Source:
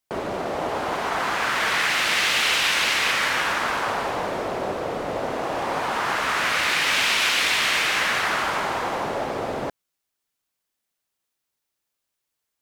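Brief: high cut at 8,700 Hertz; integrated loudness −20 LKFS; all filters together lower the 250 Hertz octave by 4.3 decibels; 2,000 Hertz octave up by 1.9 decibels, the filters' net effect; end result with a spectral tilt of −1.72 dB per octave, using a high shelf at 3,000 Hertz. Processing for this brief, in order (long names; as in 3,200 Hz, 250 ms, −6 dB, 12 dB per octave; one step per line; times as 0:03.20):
low-pass filter 8,700 Hz
parametric band 250 Hz −6 dB
parametric band 2,000 Hz +5 dB
high-shelf EQ 3,000 Hz −7 dB
level +1.5 dB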